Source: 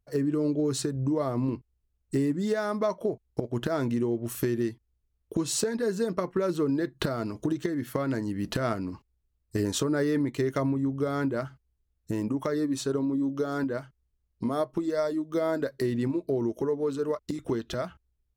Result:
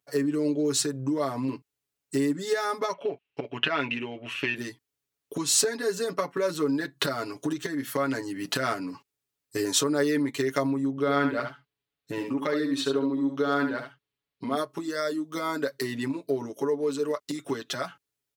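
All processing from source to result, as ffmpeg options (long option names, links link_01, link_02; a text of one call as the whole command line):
ffmpeg -i in.wav -filter_complex "[0:a]asettb=1/sr,asplit=3[link_01][link_02][link_03];[link_01]atrim=end=2.934[link_04];[link_02]atrim=start=2.93:end=4.56,asetpts=PTS-STARTPTS,afade=type=in:duration=0.004:curve=qsin,afade=type=out:start_time=1.626:duration=0.004:curve=qsin,lowpass=frequency=2700:width_type=q:width=7.4,lowshelf=frequency=450:gain=-3.5[link_05];[link_03]atrim=start=4.556[link_06];[link_04][link_05]acrossfade=duration=0.004:curve1=hsin:curve2=qsin[link_07];[link_07][link_06]acrossfade=duration=0.004:curve1=qsin:curve2=hsin,asettb=1/sr,asplit=3[link_08][link_09][link_10];[link_08]atrim=end=10.904[link_11];[link_09]atrim=start=10.9:end=14.57,asetpts=PTS-STARTPTS,afade=type=in:duration=0.004:curve=qsin,afade=type=out:start_time=3.666:duration=0.004:curve=qsin,highshelf=frequency=4800:width_type=q:width=1.5:gain=-9,aecho=1:1:71:0.447,atrim=end_sample=161847[link_12];[link_10]atrim=start=14.566[link_13];[link_11][link_12]acrossfade=duration=0.004:curve1=hsin:curve2=qsin[link_14];[link_14][link_13]acrossfade=duration=0.004:curve1=qsin:curve2=hsin,highpass=180,tiltshelf=frequency=890:gain=-5,aecho=1:1:7.1:0.97" out.wav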